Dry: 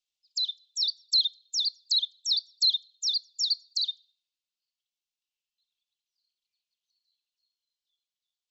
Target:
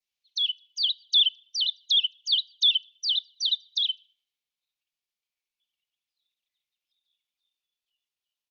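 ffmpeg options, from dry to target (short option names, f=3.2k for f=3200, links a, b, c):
-af "adynamicequalizer=threshold=0.0158:dfrequency=3700:dqfactor=2.5:tfrequency=3700:tqfactor=2.5:attack=5:release=100:ratio=0.375:range=2:mode=boostabove:tftype=bell,asetrate=37084,aresample=44100,atempo=1.18921"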